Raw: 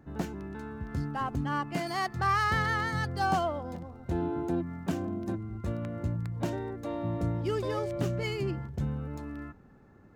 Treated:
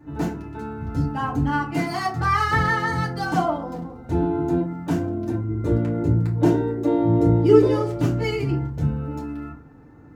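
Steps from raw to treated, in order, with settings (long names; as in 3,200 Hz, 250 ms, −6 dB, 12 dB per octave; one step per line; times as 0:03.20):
0:05.48–0:07.67: parametric band 390 Hz +11 dB 1 octave
feedback delay network reverb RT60 0.38 s, low-frequency decay 1.4×, high-frequency decay 0.55×, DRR −6 dB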